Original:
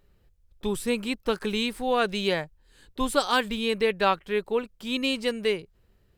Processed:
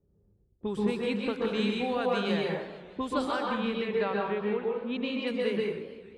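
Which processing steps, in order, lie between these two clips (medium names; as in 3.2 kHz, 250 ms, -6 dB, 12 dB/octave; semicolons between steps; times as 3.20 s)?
high-pass 80 Hz 12 dB/octave; gate with hold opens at -58 dBFS; level-controlled noise filter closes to 390 Hz, open at -21.5 dBFS; treble shelf 5.8 kHz -9 dB; compression, threshold -29 dBFS, peak gain reduction 11.5 dB; 3.25–5.27 s: distance through air 180 m; plate-style reverb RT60 0.73 s, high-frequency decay 0.5×, pre-delay 115 ms, DRR -1.5 dB; modulated delay 153 ms, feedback 66%, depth 217 cents, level -16.5 dB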